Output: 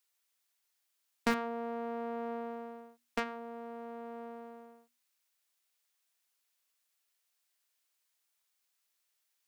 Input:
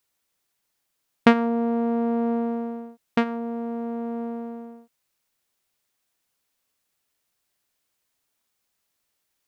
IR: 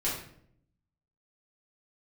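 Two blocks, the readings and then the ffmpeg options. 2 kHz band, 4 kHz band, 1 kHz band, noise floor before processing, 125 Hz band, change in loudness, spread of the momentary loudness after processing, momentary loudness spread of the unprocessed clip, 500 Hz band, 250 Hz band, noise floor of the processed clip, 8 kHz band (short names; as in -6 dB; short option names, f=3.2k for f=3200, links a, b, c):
-9.0 dB, -8.5 dB, -10.0 dB, -77 dBFS, under -15 dB, -14.0 dB, 16 LU, 15 LU, -12.0 dB, -17.5 dB, -80 dBFS, n/a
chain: -filter_complex "[0:a]tiltshelf=f=820:g=-5.5,bandreject=f=60:t=h:w=6,bandreject=f=120:t=h:w=6,bandreject=f=180:t=h:w=6,bandreject=f=240:t=h:w=6,asoftclip=type=tanh:threshold=-9.5dB,acrossover=split=220|2000[a][b][c];[a]acrusher=bits=4:mix=0:aa=0.000001[d];[d][b][c]amix=inputs=3:normalize=0,volume=-8.5dB"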